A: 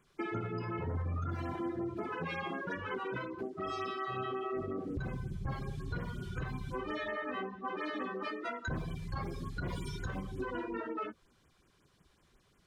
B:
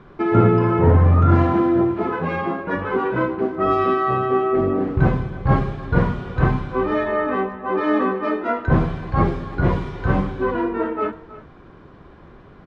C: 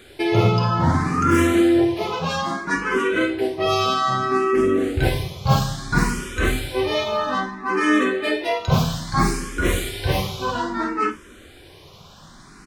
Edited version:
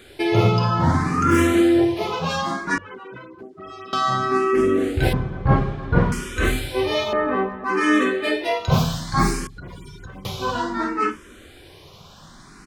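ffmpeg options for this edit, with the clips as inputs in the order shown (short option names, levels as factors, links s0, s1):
-filter_complex "[0:a]asplit=2[s0][s1];[1:a]asplit=2[s2][s3];[2:a]asplit=5[s4][s5][s6][s7][s8];[s4]atrim=end=2.782[s9];[s0]atrim=start=2.778:end=3.932[s10];[s5]atrim=start=3.928:end=5.132[s11];[s2]atrim=start=5.128:end=6.122[s12];[s6]atrim=start=6.118:end=7.132[s13];[s3]atrim=start=7.128:end=7.642[s14];[s7]atrim=start=7.638:end=9.472[s15];[s1]atrim=start=9.468:end=10.252[s16];[s8]atrim=start=10.248[s17];[s9][s10]acrossfade=d=0.004:c1=hsin:c2=hsin[s18];[s18][s11]acrossfade=d=0.004:c1=hsin:c2=hsin[s19];[s19][s12]acrossfade=d=0.004:c1=hsin:c2=hsin[s20];[s20][s13]acrossfade=d=0.004:c1=hsin:c2=hsin[s21];[s21][s14]acrossfade=d=0.004:c1=hsin:c2=hsin[s22];[s22][s15]acrossfade=d=0.004:c1=hsin:c2=hsin[s23];[s23][s16]acrossfade=d=0.004:c1=hsin:c2=hsin[s24];[s24][s17]acrossfade=d=0.004:c1=hsin:c2=hsin"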